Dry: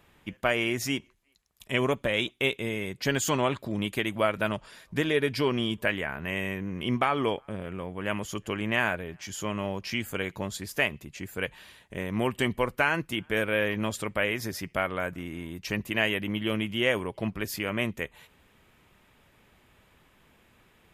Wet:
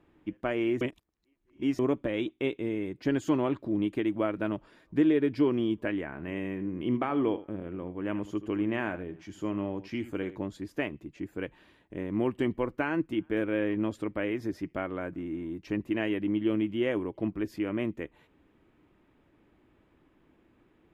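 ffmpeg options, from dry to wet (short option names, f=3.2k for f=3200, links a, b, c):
-filter_complex "[0:a]asettb=1/sr,asplit=3[a][b][c];[a]atrim=end=6.054[d];[b]atrim=start=6.05:end=10.39,asetpts=PTS-STARTPTS,afade=t=in:d=0.004:c=qsin,afade=t=out:st=4.336:d=0.004:c=qsin,aecho=1:1:79:0.188,atrim=end_sample=191394[e];[c]atrim=start=10.386[f];[d][e]acrossfade=d=0.004:c1=hsin:c2=qsin[g];[g][f]acrossfade=d=0.004:c1=qsin:c2=hsin,asplit=3[h][i][j];[h]atrim=end=0.812[k];[i]atrim=start=0.808:end=1.792,asetpts=PTS-STARTPTS,areverse[l];[j]atrim=start=1.788[m];[k][l]acrossfade=d=0.004:c1=hsin:c2=hsin[n];[n][m]acrossfade=d=0.004:c1=hsin:c2=hsin,lowpass=f=1.3k:p=1,equalizer=f=310:w=2.8:g=14,volume=-5dB"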